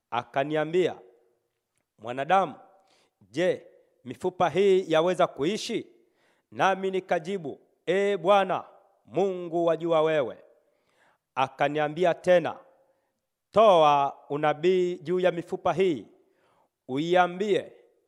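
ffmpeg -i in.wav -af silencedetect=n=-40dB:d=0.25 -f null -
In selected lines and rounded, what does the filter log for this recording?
silence_start: 1.00
silence_end: 2.04 | silence_duration: 1.04
silence_start: 2.55
silence_end: 3.34 | silence_duration: 0.80
silence_start: 3.59
silence_end: 4.06 | silence_duration: 0.47
silence_start: 5.82
silence_end: 6.53 | silence_duration: 0.70
silence_start: 7.54
silence_end: 7.88 | silence_duration: 0.34
silence_start: 8.65
silence_end: 9.12 | silence_duration: 0.47
silence_start: 10.34
silence_end: 11.37 | silence_duration: 1.03
silence_start: 12.58
silence_end: 13.54 | silence_duration: 0.97
silence_start: 16.03
silence_end: 16.89 | silence_duration: 0.85
silence_start: 17.68
silence_end: 18.08 | silence_duration: 0.39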